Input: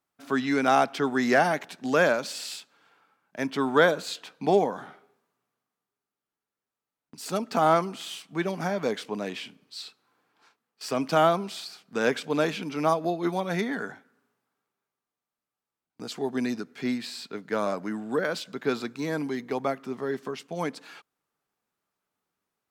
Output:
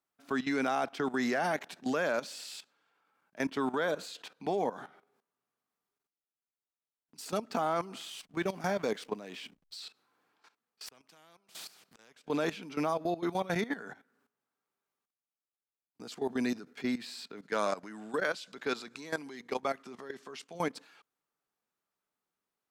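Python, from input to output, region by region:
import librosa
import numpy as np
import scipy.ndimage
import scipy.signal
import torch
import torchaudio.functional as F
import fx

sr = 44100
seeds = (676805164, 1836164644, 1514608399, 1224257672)

y = fx.chain(x, sr, fx.high_shelf(hz=4300.0, db=4.0),
    fx.backlash(play_db=-50.0), at=(8.11, 9.8))
y = fx.chain(y, sr, fx.gate_flip(shuts_db=-25.0, range_db=-32),
    fx.spectral_comp(ratio=2.0), at=(10.86, 12.28))
y = fx.chain(y, sr, fx.lowpass(hz=9300.0, slope=12),
    fx.tilt_eq(slope=2.0), at=(17.42, 20.55))
y = fx.peak_eq(y, sr, hz=86.0, db=-4.5, octaves=2.1)
y = fx.level_steps(y, sr, step_db=15)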